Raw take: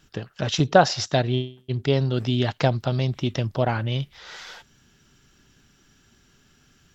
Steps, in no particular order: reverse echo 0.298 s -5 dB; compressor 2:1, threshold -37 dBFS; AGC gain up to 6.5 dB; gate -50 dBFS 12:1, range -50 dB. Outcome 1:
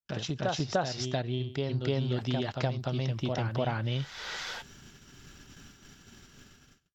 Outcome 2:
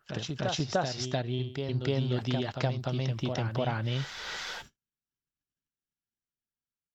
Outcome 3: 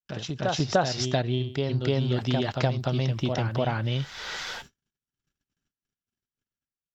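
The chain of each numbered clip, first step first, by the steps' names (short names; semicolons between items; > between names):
AGC > reverse echo > gate > compressor; gate > AGC > compressor > reverse echo; reverse echo > compressor > gate > AGC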